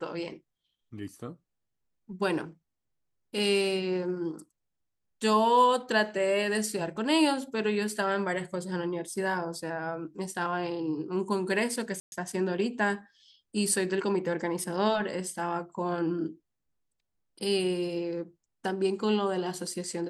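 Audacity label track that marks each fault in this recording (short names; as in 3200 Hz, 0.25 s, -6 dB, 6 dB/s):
12.000000	12.120000	gap 0.121 s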